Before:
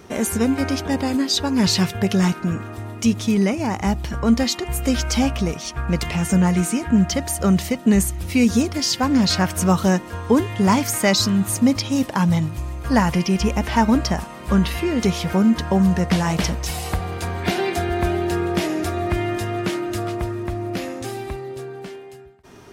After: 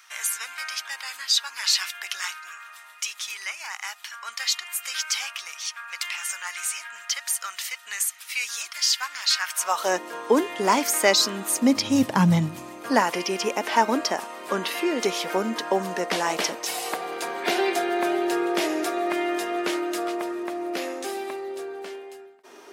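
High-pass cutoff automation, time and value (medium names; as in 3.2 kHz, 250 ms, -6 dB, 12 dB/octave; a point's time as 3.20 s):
high-pass 24 dB/octave
9.47 s 1.3 kHz
10.02 s 320 Hz
11.59 s 320 Hz
12.01 s 96 Hz
13.06 s 330 Hz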